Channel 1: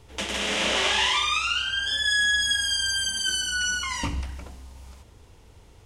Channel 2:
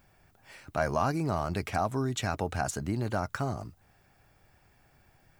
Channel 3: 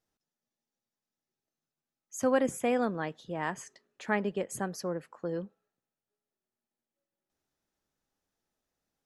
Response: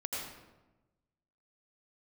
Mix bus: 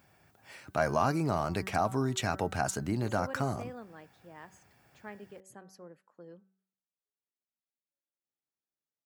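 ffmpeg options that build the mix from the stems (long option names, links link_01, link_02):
-filter_complex "[1:a]volume=0.5dB[link_01];[2:a]adelay=950,volume=-16dB[link_02];[link_01][link_02]amix=inputs=2:normalize=0,highpass=100,bandreject=frequency=190.4:width_type=h:width=4,bandreject=frequency=380.8:width_type=h:width=4,bandreject=frequency=571.2:width_type=h:width=4,bandreject=frequency=761.6:width_type=h:width=4,bandreject=frequency=952:width_type=h:width=4,bandreject=frequency=1142.4:width_type=h:width=4,bandreject=frequency=1332.8:width_type=h:width=4,bandreject=frequency=1523.2:width_type=h:width=4,bandreject=frequency=1713.6:width_type=h:width=4,bandreject=frequency=1904:width_type=h:width=4"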